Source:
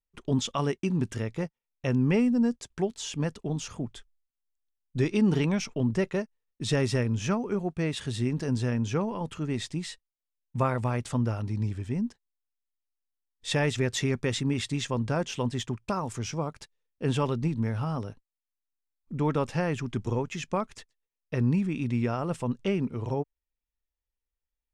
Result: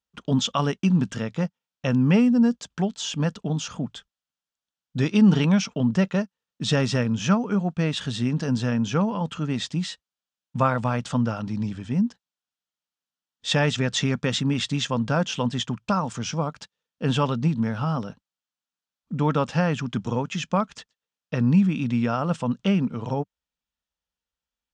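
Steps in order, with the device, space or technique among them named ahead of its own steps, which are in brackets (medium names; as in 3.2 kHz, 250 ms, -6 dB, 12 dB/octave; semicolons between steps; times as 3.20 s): car door speaker (cabinet simulation 85–7300 Hz, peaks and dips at 100 Hz -9 dB, 190 Hz +5 dB, 370 Hz -10 dB, 1.4 kHz +4 dB, 2.1 kHz -5 dB, 3.2 kHz +4 dB); trim +5.5 dB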